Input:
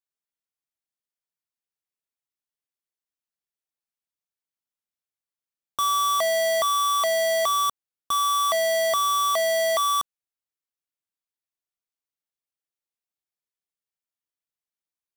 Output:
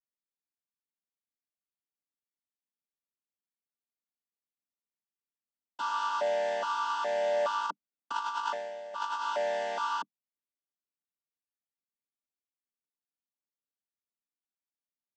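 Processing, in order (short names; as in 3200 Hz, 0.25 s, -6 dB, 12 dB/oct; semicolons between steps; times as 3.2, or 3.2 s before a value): chord vocoder minor triad, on G3; 7.66–9.22 negative-ratio compressor -26 dBFS, ratio -0.5; gain -8 dB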